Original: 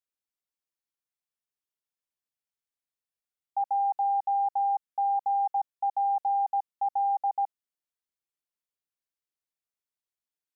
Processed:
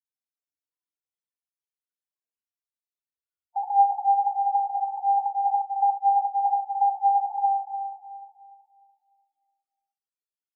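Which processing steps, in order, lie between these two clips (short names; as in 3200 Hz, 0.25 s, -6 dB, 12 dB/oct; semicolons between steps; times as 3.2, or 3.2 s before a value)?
loudest bins only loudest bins 8; FDN reverb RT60 2.2 s, high-frequency decay 0.95×, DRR -1.5 dB; tape flanging out of phase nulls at 0.25 Hz, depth 7.6 ms; gain +7 dB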